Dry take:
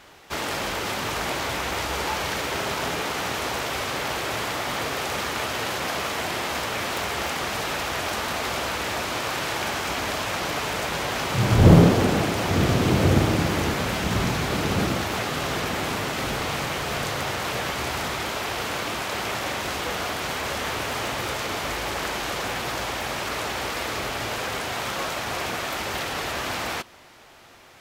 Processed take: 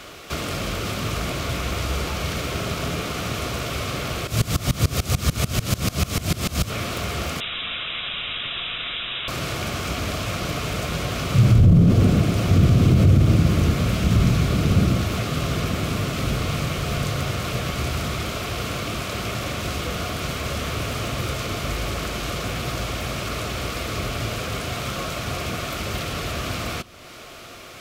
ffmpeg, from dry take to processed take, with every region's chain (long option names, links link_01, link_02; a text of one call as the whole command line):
ffmpeg -i in.wav -filter_complex "[0:a]asettb=1/sr,asplit=3[link_01][link_02][link_03];[link_01]atrim=end=4.274[link_04];[link_02]atrim=start=4.27:end=6.7,asetpts=PTS-STARTPTS,afade=type=in:duration=0.004:curve=qsin,afade=type=out:start_time=2.426:duration=0.004:curve=qsin,bass=frequency=250:gain=9,treble=frequency=4000:gain=9,acontrast=62,aeval=exprs='val(0)*pow(10,-23*if(lt(mod(-6.8*n/s,1),2*abs(-6.8)/1000),1-mod(-6.8*n/s,1)/(2*abs(-6.8)/1000),(mod(-6.8*n/s,1)-2*abs(-6.8)/1000)/(1-2*abs(-6.8)/1000))/20)':channel_layout=same[link_05];[link_03]atrim=start=6.696[link_06];[link_04][link_05]acrossfade=duration=0.004:curve1=hsin:curve2=qsin[link_07];[link_07][link_06]acrossfade=duration=0.004:curve1=qsin:curve2=hsin,asettb=1/sr,asplit=3[link_08][link_09][link_10];[link_08]atrim=end=7.404[link_11];[link_09]atrim=start=7.4:end=9.28,asetpts=PTS-STARTPTS,afade=type=in:duration=0.004:curve=qsin,afade=type=out:start_time=1.876:duration=0.004:curve=qsin,highpass=110,lowpass=frequency=3400:width_type=q:width=0.5098,lowpass=frequency=3400:width_type=q:width=0.6013,lowpass=frequency=3400:width_type=q:width=0.9,lowpass=frequency=3400:width_type=q:width=2.563,afreqshift=-4000[link_12];[link_10]atrim=start=9.276[link_13];[link_11][link_12]acrossfade=duration=0.004:curve1=hsin:curve2=qsin[link_14];[link_14][link_13]acrossfade=duration=0.004:curve1=qsin:curve2=hsin,acrossover=split=190[link_15][link_16];[link_16]acompressor=threshold=-47dB:ratio=2[link_17];[link_15][link_17]amix=inputs=2:normalize=0,superequalizer=9b=0.355:11b=0.562,alimiter=level_in=17dB:limit=-1dB:release=50:level=0:latency=1,volume=-6dB" out.wav